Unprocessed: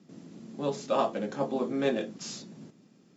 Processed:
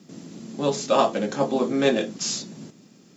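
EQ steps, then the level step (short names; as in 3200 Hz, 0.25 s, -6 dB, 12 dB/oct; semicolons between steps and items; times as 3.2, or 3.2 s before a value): high shelf 3900 Hz +9 dB; +7.0 dB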